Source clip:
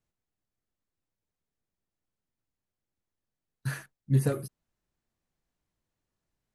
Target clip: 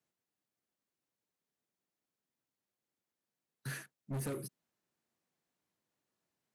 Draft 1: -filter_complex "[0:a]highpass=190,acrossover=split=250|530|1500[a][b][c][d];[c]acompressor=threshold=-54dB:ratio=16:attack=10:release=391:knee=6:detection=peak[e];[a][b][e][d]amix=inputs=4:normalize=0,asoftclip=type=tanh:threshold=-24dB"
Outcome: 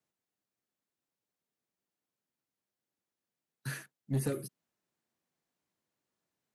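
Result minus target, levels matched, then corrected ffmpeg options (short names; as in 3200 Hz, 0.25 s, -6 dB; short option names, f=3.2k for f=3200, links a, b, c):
soft clip: distortion -10 dB
-filter_complex "[0:a]highpass=190,acrossover=split=250|530|1500[a][b][c][d];[c]acompressor=threshold=-54dB:ratio=16:attack=10:release=391:knee=6:detection=peak[e];[a][b][e][d]amix=inputs=4:normalize=0,asoftclip=type=tanh:threshold=-35dB"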